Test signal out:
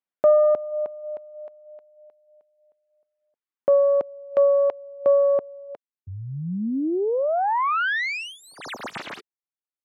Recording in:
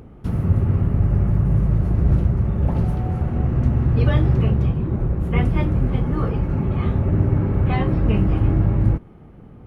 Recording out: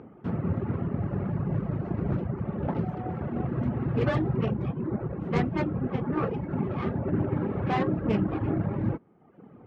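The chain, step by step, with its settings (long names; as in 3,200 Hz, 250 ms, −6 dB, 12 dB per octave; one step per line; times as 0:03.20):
stylus tracing distortion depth 0.33 ms
reverb reduction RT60 0.98 s
band-pass filter 190–2,100 Hz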